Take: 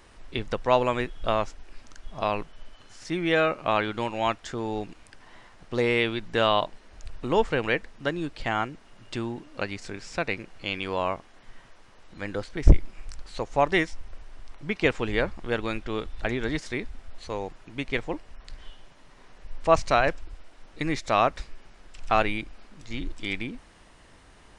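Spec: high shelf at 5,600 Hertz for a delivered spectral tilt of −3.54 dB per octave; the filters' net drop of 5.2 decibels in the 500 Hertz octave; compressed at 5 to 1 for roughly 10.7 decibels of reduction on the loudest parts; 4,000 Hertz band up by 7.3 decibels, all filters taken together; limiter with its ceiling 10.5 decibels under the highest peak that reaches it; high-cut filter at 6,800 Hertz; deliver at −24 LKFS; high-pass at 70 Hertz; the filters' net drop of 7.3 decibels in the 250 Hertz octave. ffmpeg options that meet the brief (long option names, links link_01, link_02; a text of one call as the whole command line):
ffmpeg -i in.wav -af "highpass=70,lowpass=6800,equalizer=frequency=250:width_type=o:gain=-8.5,equalizer=frequency=500:width_type=o:gain=-5,equalizer=frequency=4000:width_type=o:gain=8.5,highshelf=frequency=5600:gain=4.5,acompressor=threshold=-27dB:ratio=5,volume=12dB,alimiter=limit=-9.5dB:level=0:latency=1" out.wav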